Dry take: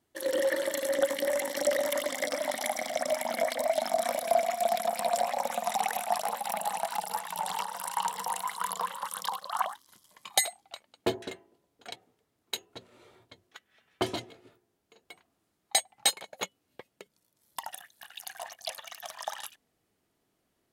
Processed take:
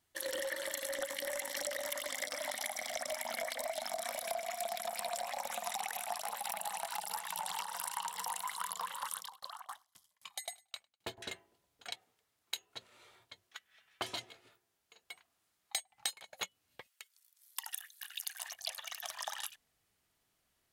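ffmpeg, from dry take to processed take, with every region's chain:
-filter_complex "[0:a]asettb=1/sr,asplit=3[a][b][c];[a]atrim=end=9.164[d];[b]atrim=start=9.16:end=11.18,asetpts=PTS-STARTPTS,afade=t=in:d=0.004:c=qsin,afade=t=out:st=2.016:d=0.004:c=qsin,aecho=1:1:103|206|309:0.0841|0.0294|0.0103,atrim=end_sample=89082,aeval=exprs='val(0)*pow(10,-29*if(lt(mod(3.8*n/s,1),2*abs(3.8)/1000),1-mod(3.8*n/s,1)/(2*abs(3.8)/1000),(mod(3.8*n/s,1)-2*abs(3.8)/1000)/(1-2*abs(3.8)/1000))/20)':c=same[e];[c]atrim=start=11.176[f];[d][e]acrossfade=d=0.004:c1=hsin:c2=qsin[g];[g][f]acrossfade=d=0.004:c1=qsin:c2=hsin,asettb=1/sr,asplit=3[h][i][j];[h]atrim=end=11.924[k];[i]atrim=start=11.92:end=15.92,asetpts=PTS-STARTPTS,afade=t=in:d=0.004:c=qsin,afade=t=out:st=3.996:d=0.004:c=qsin,lowshelf=f=190:g=-8.5,asoftclip=type=hard:threshold=-16.5dB[l];[j]atrim=start=15.916[m];[k][l]acrossfade=d=0.004:c1=hsin:c2=qsin[n];[n][m]acrossfade=d=0.004:c1=qsin:c2=hsin,asettb=1/sr,asplit=3[o][p][q];[o]atrim=end=16.874[r];[p]atrim=start=16.87:end=18.52,asetpts=PTS-STARTPTS,afade=t=in:d=0.004:c=qsin,afade=t=out:st=1.646:d=0.004:c=qsin,highpass=1.3k,highshelf=f=8.6k:g=6[s];[q]atrim=start=18.516[t];[r][s]acrossfade=d=0.004:c1=hsin:c2=qsin[u];[u][t]acrossfade=d=0.004:c1=qsin:c2=hsin,equalizer=f=310:t=o:w=2.6:g=-13,acompressor=threshold=-37dB:ratio=6,volume=2dB"

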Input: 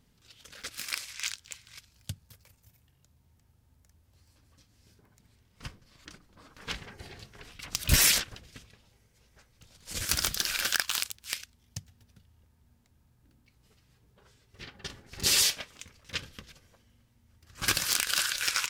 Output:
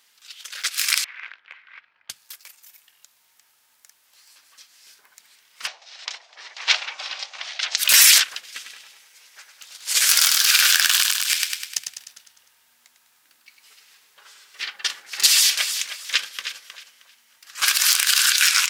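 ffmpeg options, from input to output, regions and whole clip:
-filter_complex "[0:a]asettb=1/sr,asplit=3[a][b][c];[a]atrim=end=1.044[d];[b]atrim=start=1.04:end=2.1,asetpts=PTS-STARTPTS,afade=t=in:d=0.004:c=qsin,afade=t=out:st=1.056:d=0.004:c=qsin,aeval=exprs='if(lt(val(0),0),0.708*val(0),val(0))':c=same,lowpass=f=2k:w=0.5412,lowpass=f=2k:w=1.3066,acompressor=threshold=-50dB:ratio=3:attack=3.2:release=140:knee=1:detection=peak[e];[c]atrim=start=2.096[f];[d][e]acrossfade=d=0.004:c1=hsin:c2=qsin[g];[g][f]acrossfade=d=0.004:c1=qsin:c2=hsin,asettb=1/sr,asplit=3[h][i][j];[h]atrim=end=5.674[k];[i]atrim=start=5.67:end=7.78,asetpts=PTS-STARTPTS,afade=t=in:d=0.004:c=qsin,afade=t=out:st=2.106:d=0.004:c=qsin,lowpass=f=5.4k:w=0.5412,lowpass=f=5.4k:w=1.3066,highshelf=f=2k:g=9,aeval=exprs='val(0)*sin(2*PI*680*n/s)':c=same[l];[j]atrim=start=7.776[m];[k][l]acrossfade=d=0.004:c1=hsin:c2=qsin[n];[n][m]acrossfade=d=0.004:c1=qsin:c2=hsin,asettb=1/sr,asplit=3[o][p][q];[o]atrim=end=8.504[r];[p]atrim=start=8.5:end=14.65,asetpts=PTS-STARTPTS,afade=t=in:d=0.004:c=qsin,afade=t=out:st=6.146:d=0.004:c=qsin,asplit=2[s][t];[t]adelay=12,volume=-14dB[u];[s][u]amix=inputs=2:normalize=0,atrim=end_sample=271215,aecho=1:1:101|202|303|404|505|606|707:0.447|0.246|0.135|0.0743|0.0409|0.0225|0.0124,atrim=end_sample=271215[v];[q]atrim=start=14.646[w];[r][v]acrossfade=d=0.004:c1=hsin:c2=qsin[x];[x][w]acrossfade=d=0.004:c1=qsin:c2=hsin,asettb=1/sr,asplit=3[y][z][aa];[y]atrim=end=15.264[ab];[z]atrim=start=15.26:end=18.27,asetpts=PTS-STARTPTS,afade=t=in:d=0.004:c=qsin,afade=t=out:st=3.006:d=0.004:c=qsin,acompressor=threshold=-29dB:ratio=10:attack=3.2:release=140:knee=1:detection=peak,aecho=1:1:313|626|939:0.316|0.0727|0.0167,atrim=end_sample=132741[ac];[aa]atrim=start=18.266[ad];[ab][ac]acrossfade=d=0.004:c1=hsin:c2=qsin[ae];[ae][ad]acrossfade=d=0.004:c1=qsin:c2=hsin,highpass=1.4k,dynaudnorm=f=480:g=3:m=3dB,alimiter=level_in=15.5dB:limit=-1dB:release=50:level=0:latency=1,volume=-1dB"

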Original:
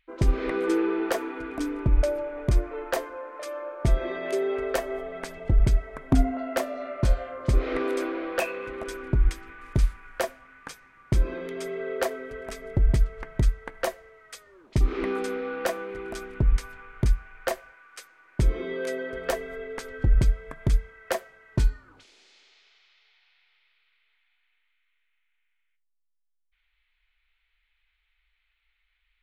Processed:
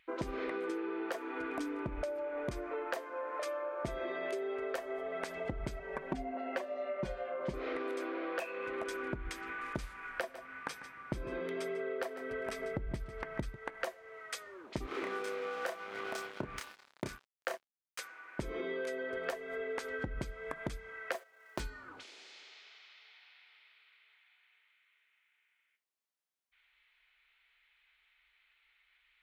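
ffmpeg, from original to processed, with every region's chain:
-filter_complex "[0:a]asettb=1/sr,asplit=3[a][b][c];[a]atrim=end=5.794[d];[b]atrim=start=5.79:end=7.54,asetpts=PTS-STARTPTS,afade=t=in:d=0.004:c=qsin,afade=t=out:st=1.746:d=0.004:c=qsin,highshelf=f=5k:g=-11,bandreject=f=1.3k:w=6.5,aecho=1:1:5.3:0.97,atrim=end_sample=77175[e];[c]atrim=start=7.536[f];[d][e]acrossfade=d=0.004:c1=hsin:c2=qsin[g];[g][f]acrossfade=d=0.004:c1=qsin:c2=hsin,asettb=1/sr,asplit=3[h][i][j];[h]atrim=end=10.114[k];[i]atrim=start=10.11:end=13.56,asetpts=PTS-STARTPTS,afade=t=in:d=0.004:c=qsin,afade=t=out:st=3.446:d=0.004:c=qsin,bass=f=250:g=5,treble=f=4k:g=-1,bandreject=f=6.8k:w=11,aecho=1:1:146:0.141,atrim=end_sample=152145[l];[j]atrim=start=13.556[m];[k][l]acrossfade=d=0.004:c1=hsin:c2=qsin[n];[n][m]acrossfade=d=0.004:c1=qsin:c2=hsin,asettb=1/sr,asplit=3[o][p][q];[o]atrim=end=14.864[r];[p]atrim=start=14.86:end=17.99,asetpts=PTS-STARTPTS,afade=t=in:d=0.004:c=qsin,afade=t=out:st=3.126:d=0.004:c=qsin,highpass=f=200:p=1,aeval=exprs='sgn(val(0))*max(abs(val(0))-0.00891,0)':c=same,asplit=2[s][t];[t]adelay=29,volume=-3dB[u];[s][u]amix=inputs=2:normalize=0,atrim=end_sample=138033[v];[q]atrim=start=17.986[w];[r][v]acrossfade=d=0.004:c1=hsin:c2=qsin[x];[x][w]acrossfade=d=0.004:c1=qsin:c2=hsin,asettb=1/sr,asplit=3[y][z][aa];[y]atrim=end=21.154[ab];[z]atrim=start=21.15:end=21.6,asetpts=PTS-STARTPTS,afade=t=in:d=0.004:c=qsin,afade=t=out:st=0.446:d=0.004:c=qsin,agate=range=-9dB:threshold=-46dB:ratio=16:release=100:detection=peak,bass=f=250:g=-13,treble=f=4k:g=4,acrusher=bits=3:mode=log:mix=0:aa=0.000001[ac];[aa]atrim=start=21.596[ad];[ab][ac]acrossfade=d=0.004:c1=hsin:c2=qsin[ae];[ae][ad]acrossfade=d=0.004:c1=qsin:c2=hsin,highpass=f=400:p=1,highshelf=f=4.4k:g=-6,acompressor=threshold=-41dB:ratio=10,volume=6dB"

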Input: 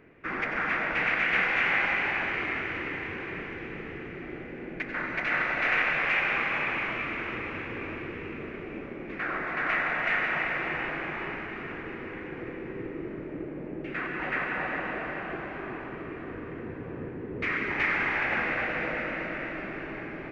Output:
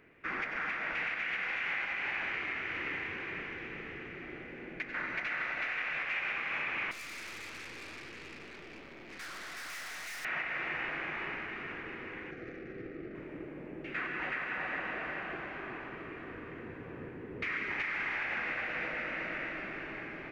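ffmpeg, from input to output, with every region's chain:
-filter_complex "[0:a]asettb=1/sr,asplit=3[a][b][c];[a]atrim=end=6.914[d];[b]atrim=start=6.91:end=10.25,asetpts=PTS-STARTPTS,afade=t=in:d=0.004:c=qsin,afade=t=out:st=3.336:d=0.004:c=qsin,highshelf=f=5.4k:g=10,aeval=exprs='(tanh(100*val(0)+0.75)-tanh(0.75))/100':c=same[e];[c]atrim=start=10.246[f];[d][e]acrossfade=d=0.004:c1=hsin:c2=qsin[g];[g][f]acrossfade=d=0.004:c1=qsin:c2=hsin,asettb=1/sr,asplit=3[h][i][j];[h]atrim=end=12.314[k];[i]atrim=start=12.31:end=13.15,asetpts=PTS-STARTPTS,afade=t=in:d=0.004:c=qsin,afade=t=out:st=0.836:d=0.004:c=qsin,asuperstop=centerf=960:order=4:qfactor=2.6,highshelf=f=3.3k:g=6.5,adynamicsmooth=sensitivity=2:basefreq=1.8k[l];[j]atrim=start=13.146[m];[k][l]acrossfade=d=0.004:c1=hsin:c2=qsin[n];[n][m]acrossfade=d=0.004:c1=qsin:c2=hsin,tiltshelf=f=1.3k:g=-4.5,alimiter=limit=-22dB:level=0:latency=1:release=354,volume=-3.5dB"

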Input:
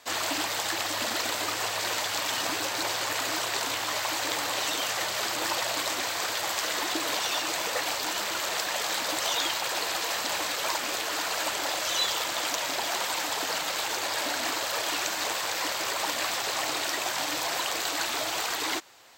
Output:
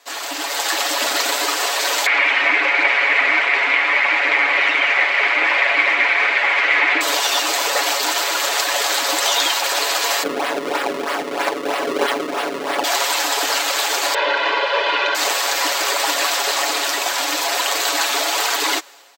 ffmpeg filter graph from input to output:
-filter_complex "[0:a]asettb=1/sr,asplit=3[a][b][c];[a]atrim=end=2.064[d];[b]atrim=start=2.06:end=7.01,asetpts=PTS-STARTPTS,afade=t=in:d=0.004:c=qsin,afade=t=out:st=4.946:d=0.004:c=qsin,aeval=exprs='clip(val(0),-1,0.0299)':c=same,lowpass=f=2.2k:t=q:w=6.7[e];[c]atrim=start=7.006[f];[d][e]acrossfade=d=0.004:c1=hsin:c2=qsin[g];[g][f]acrossfade=d=0.004:c1=qsin:c2=hsin,asettb=1/sr,asplit=3[h][i][j];[h]atrim=end=10.234[k];[i]atrim=start=10.23:end=12.84,asetpts=PTS-STARTPTS,afade=t=in:d=0.004:c=qsin,afade=t=out:st=2.606:d=0.004:c=qsin,acrusher=samples=32:mix=1:aa=0.000001:lfo=1:lforange=51.2:lforate=3.1,highshelf=f=6.3k:g=-11.5[l];[j]atrim=start=12.836[m];[k][l]acrossfade=d=0.004:c1=hsin:c2=qsin[n];[n][m]acrossfade=d=0.004:c1=qsin:c2=hsin,asettb=1/sr,asplit=3[o][p][q];[o]atrim=end=14.144[r];[p]atrim=start=14.14:end=15.15,asetpts=PTS-STARTPTS,afade=t=in:d=0.004:c=qsin,afade=t=out:st=1.006:d=0.004:c=qsin,lowpass=f=3.3k:w=0.5412,lowpass=f=3.3k:w=1.3066,aecho=1:1:2:0.91,atrim=end_sample=44541[s];[q]atrim=start=15.146[t];[r][s]acrossfade=d=0.004:c1=hsin:c2=qsin[u];[u][t]acrossfade=d=0.004:c1=qsin:c2=hsin,highpass=f=310:w=0.5412,highpass=f=310:w=1.3066,aecho=1:1:7.1:0.65,dynaudnorm=f=350:g=3:m=9.5dB"

